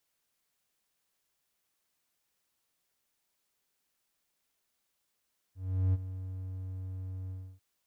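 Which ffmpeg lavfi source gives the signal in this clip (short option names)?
-f lavfi -i "aevalsrc='0.0891*(1-4*abs(mod(93.5*t+0.25,1)-0.5))':d=2.046:s=44100,afade=t=in:d=0.385,afade=t=out:st=0.385:d=0.034:silence=0.211,afade=t=out:st=1.75:d=0.296"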